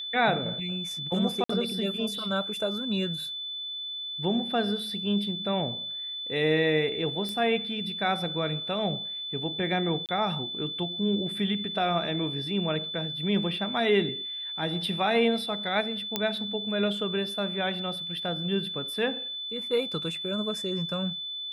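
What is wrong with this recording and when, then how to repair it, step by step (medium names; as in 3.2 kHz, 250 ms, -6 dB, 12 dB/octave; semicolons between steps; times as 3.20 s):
whine 3.5 kHz -33 dBFS
1.44–1.49 s: dropout 54 ms
7.29 s: pop -20 dBFS
10.06–10.09 s: dropout 28 ms
16.16 s: pop -11 dBFS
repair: de-click; band-stop 3.5 kHz, Q 30; interpolate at 1.44 s, 54 ms; interpolate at 10.06 s, 28 ms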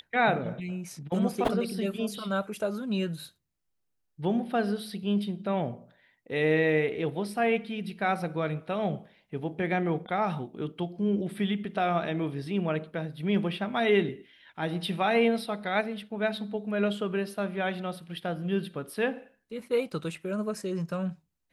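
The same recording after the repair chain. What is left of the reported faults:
nothing left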